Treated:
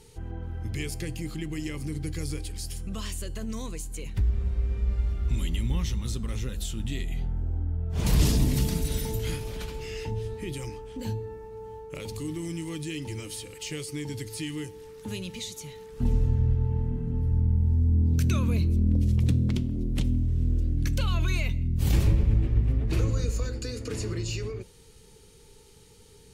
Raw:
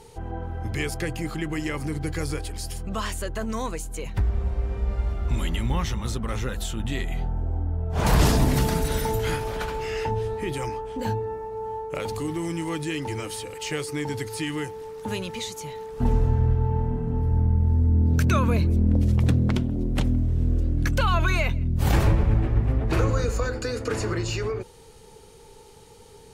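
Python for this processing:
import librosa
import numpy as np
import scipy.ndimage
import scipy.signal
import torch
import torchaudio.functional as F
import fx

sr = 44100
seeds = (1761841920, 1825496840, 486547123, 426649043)

y = fx.peak_eq(x, sr, hz=760.0, db=-12.0, octaves=1.5)
y = fx.comb_fb(y, sr, f0_hz=61.0, decay_s=0.65, harmonics='odd', damping=0.0, mix_pct=40)
y = fx.dynamic_eq(y, sr, hz=1500.0, q=1.6, threshold_db=-55.0, ratio=4.0, max_db=-8)
y = y * 10.0 ** (2.0 / 20.0)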